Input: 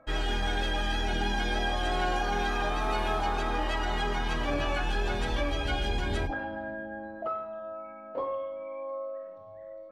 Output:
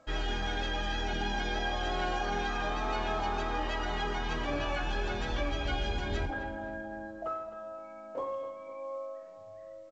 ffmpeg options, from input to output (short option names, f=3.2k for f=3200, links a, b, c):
-filter_complex "[0:a]asplit=2[a][b];[b]adelay=257,lowpass=f=3.1k:p=1,volume=-12dB,asplit=2[c][d];[d]adelay=257,lowpass=f=3.1k:p=1,volume=0.49,asplit=2[e][f];[f]adelay=257,lowpass=f=3.1k:p=1,volume=0.49,asplit=2[g][h];[h]adelay=257,lowpass=f=3.1k:p=1,volume=0.49,asplit=2[i][j];[j]adelay=257,lowpass=f=3.1k:p=1,volume=0.49[k];[a][c][e][g][i][k]amix=inputs=6:normalize=0,acontrast=33,volume=-8.5dB" -ar 16000 -c:a pcm_alaw